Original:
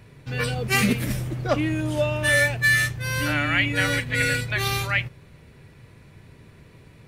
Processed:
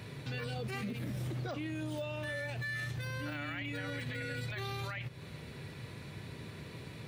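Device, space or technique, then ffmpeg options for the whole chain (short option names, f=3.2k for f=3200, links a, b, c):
broadcast voice chain: -af "highpass=91,deesser=0.95,acompressor=threshold=-38dB:ratio=4,equalizer=f=3.9k:t=o:w=0.59:g=6,alimiter=level_in=10.5dB:limit=-24dB:level=0:latency=1:release=36,volume=-10.5dB,volume=3.5dB"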